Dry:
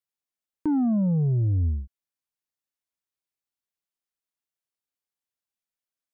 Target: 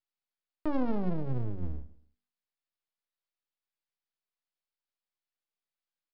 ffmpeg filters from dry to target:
ffmpeg -i in.wav -filter_complex "[0:a]lowshelf=frequency=250:gain=-8.5,bandreject=frequency=48.55:width_type=h:width=4,bandreject=frequency=97.1:width_type=h:width=4,bandreject=frequency=145.65:width_type=h:width=4,bandreject=frequency=194.2:width_type=h:width=4,bandreject=frequency=242.75:width_type=h:width=4,bandreject=frequency=291.3:width_type=h:width=4,bandreject=frequency=339.85:width_type=h:width=4,bandreject=frequency=388.4:width_type=h:width=4,bandreject=frequency=436.95:width_type=h:width=4,bandreject=frequency=485.5:width_type=h:width=4,bandreject=frequency=534.05:width_type=h:width=4,aresample=11025,aeval=exprs='max(val(0),0)':channel_layout=same,aresample=44100,asplit=2[link_01][link_02];[link_02]adelay=16,volume=-11.5dB[link_03];[link_01][link_03]amix=inputs=2:normalize=0,aecho=1:1:140|280:0.1|0.03,aeval=exprs='max(val(0),0)':channel_layout=same,equalizer=frequency=110:width=0.66:gain=-3,volume=2.5dB" out.wav

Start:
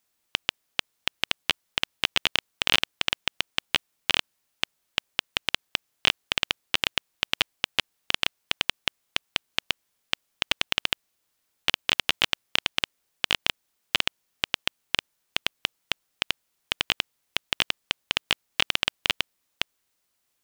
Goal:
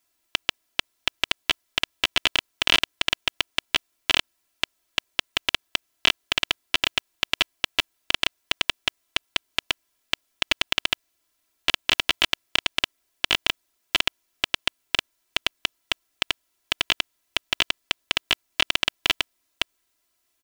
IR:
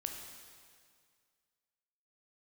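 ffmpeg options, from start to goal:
-af "aecho=1:1:3:0.81"

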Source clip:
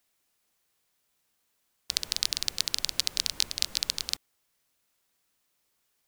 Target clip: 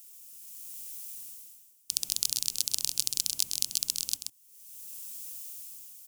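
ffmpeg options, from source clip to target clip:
ffmpeg -i in.wav -af "aexciter=amount=10.1:drive=5.7:freq=2700,dynaudnorm=framelen=160:gausssize=7:maxgain=9dB,equalizer=frequency=125:width_type=o:width=1:gain=11,equalizer=frequency=250:width_type=o:width=1:gain=7,equalizer=frequency=4000:width_type=o:width=1:gain=-11,aecho=1:1:131:0.473,volume=1dB" out.wav

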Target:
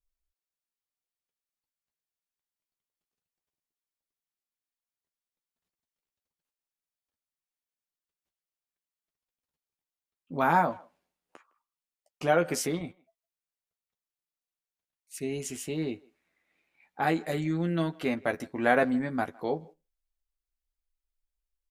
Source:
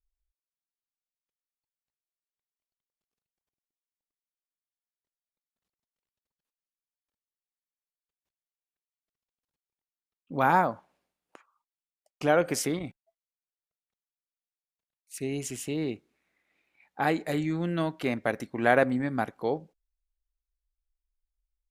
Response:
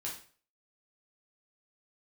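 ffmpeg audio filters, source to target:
-filter_complex "[0:a]asplit=2[link_01][link_02];[link_02]adelay=12,volume=-6dB[link_03];[link_01][link_03]amix=inputs=2:normalize=0,asplit=2[link_04][link_05];[link_05]adelay=160,highpass=300,lowpass=3400,asoftclip=type=hard:threshold=-15dB,volume=-25dB[link_06];[link_04][link_06]amix=inputs=2:normalize=0,volume=-2dB"

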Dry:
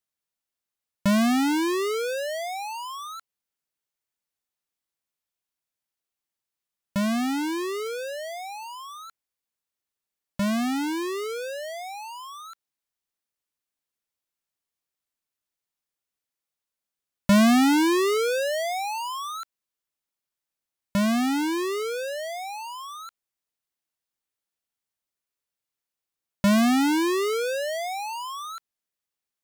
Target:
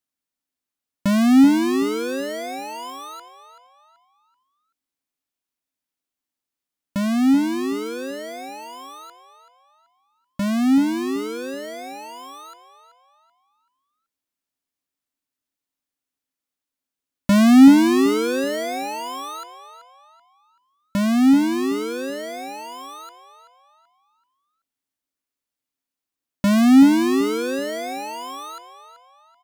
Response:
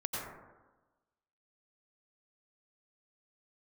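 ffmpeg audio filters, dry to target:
-filter_complex "[0:a]asettb=1/sr,asplit=3[link_01][link_02][link_03];[link_01]atrim=end=2.604[link_04];[link_02]atrim=start=2.6:end=3.01,asetpts=PTS-STARTPTS,afade=type=in:duration=0.004:curve=qsin,afade=type=out:start_time=0.406:duration=0.004:curve=qsin,acrusher=bits=4:mode=log:mix=0:aa=0.000001[link_05];[link_03]atrim=start=3.006[link_06];[link_04][link_05]acrossfade=duration=0.004:curve1=hsin:curve2=qsin[link_07];[link_07][link_06]acrossfade=duration=0.004:curve1=qsin:curve2=hsin,equalizer=frequency=270:width=4.7:gain=13.5,asplit=2[link_08][link_09];[link_09]adelay=382,lowpass=frequency=4800:poles=1,volume=-11dB,asplit=2[link_10][link_11];[link_11]adelay=382,lowpass=frequency=4800:poles=1,volume=0.39,asplit=2[link_12][link_13];[link_13]adelay=382,lowpass=frequency=4800:poles=1,volume=0.39,asplit=2[link_14][link_15];[link_15]adelay=382,lowpass=frequency=4800:poles=1,volume=0.39[link_16];[link_08][link_10][link_12][link_14][link_16]amix=inputs=5:normalize=0"

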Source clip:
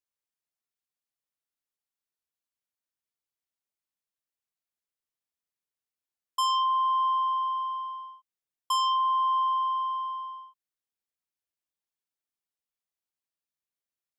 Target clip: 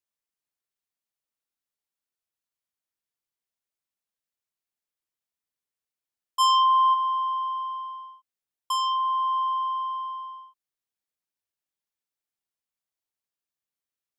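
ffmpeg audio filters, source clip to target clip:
ffmpeg -i in.wav -filter_complex "[0:a]asplit=3[link_01][link_02][link_03];[link_01]afade=type=out:start_time=6.39:duration=0.02[link_04];[link_02]acontrast=51,afade=type=in:start_time=6.39:duration=0.02,afade=type=out:start_time=6.93:duration=0.02[link_05];[link_03]afade=type=in:start_time=6.93:duration=0.02[link_06];[link_04][link_05][link_06]amix=inputs=3:normalize=0" out.wav

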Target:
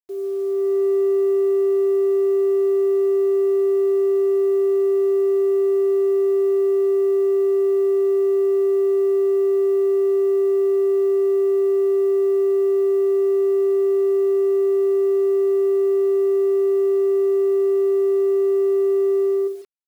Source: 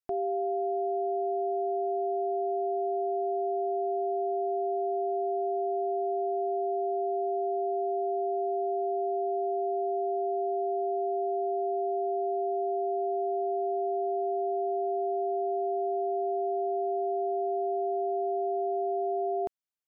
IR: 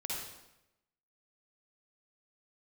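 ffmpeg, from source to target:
-filter_complex "[0:a]dynaudnorm=framelen=100:gausssize=11:maxgain=8.5dB,afftfilt=real='re*gte(hypot(re,im),0.0562)':imag='im*gte(hypot(re,im),0.0562)':win_size=1024:overlap=0.75,firequalizer=gain_entry='entry(110,0);entry(170,-29);entry(260,-20);entry(400,0);entry(670,-29);entry(1000,-23);entry(2200,-8);entry(3200,0)':delay=0.05:min_phase=1,aecho=1:1:48|79|140|170:0.266|0.237|0.2|0.106,asplit=2[link_01][link_02];[link_02]asoftclip=type=tanh:threshold=-28dB,volume=-7dB[link_03];[link_01][link_03]amix=inputs=2:normalize=0,equalizer=frequency=89:width_type=o:width=0.24:gain=-2.5,bandreject=frequency=790:width=12,acrusher=bits=8:mix=0:aa=0.000001,volume=2.5dB"

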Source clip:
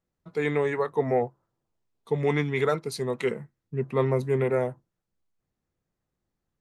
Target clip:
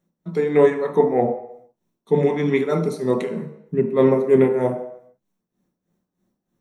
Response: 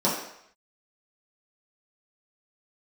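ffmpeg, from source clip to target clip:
-filter_complex "[0:a]tremolo=f=3.2:d=0.84,asplit=2[link_01][link_02];[1:a]atrim=start_sample=2205,lowshelf=frequency=260:gain=10,highshelf=frequency=9300:gain=12[link_03];[link_02][link_03]afir=irnorm=-1:irlink=0,volume=-14.5dB[link_04];[link_01][link_04]amix=inputs=2:normalize=0,volume=4.5dB"

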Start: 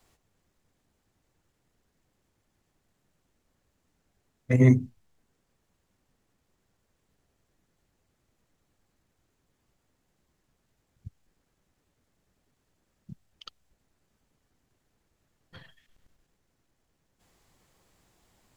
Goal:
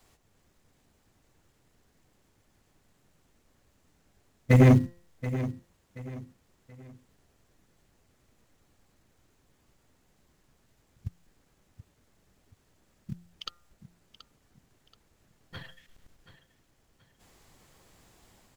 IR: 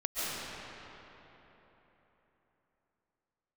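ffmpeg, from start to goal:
-filter_complex "[0:a]dynaudnorm=framelen=100:gausssize=5:maxgain=3.5dB,asplit=2[link_01][link_02];[link_02]acrusher=bits=4:mode=log:mix=0:aa=0.000001,volume=-7dB[link_03];[link_01][link_03]amix=inputs=2:normalize=0,bandreject=frequency=173.5:width_type=h:width=4,bandreject=frequency=347:width_type=h:width=4,bandreject=frequency=520.5:width_type=h:width=4,bandreject=frequency=694:width_type=h:width=4,bandreject=frequency=867.5:width_type=h:width=4,bandreject=frequency=1041:width_type=h:width=4,bandreject=frequency=1214.5:width_type=h:width=4,bandreject=frequency=1388:width_type=h:width=4,bandreject=frequency=1561.5:width_type=h:width=4,bandreject=frequency=1735:width_type=h:width=4,bandreject=frequency=1908.5:width_type=h:width=4,asoftclip=type=hard:threshold=-13dB,aecho=1:1:729|1458|2187:0.2|0.0678|0.0231"

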